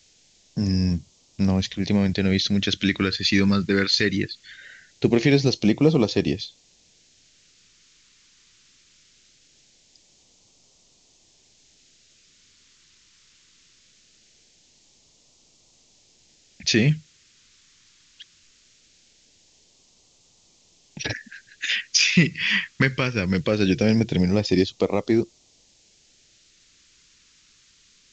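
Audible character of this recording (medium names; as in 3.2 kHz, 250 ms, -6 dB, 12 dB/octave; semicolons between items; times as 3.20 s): a quantiser's noise floor 10-bit, dither triangular; phasing stages 2, 0.21 Hz, lowest notch 700–1500 Hz; µ-law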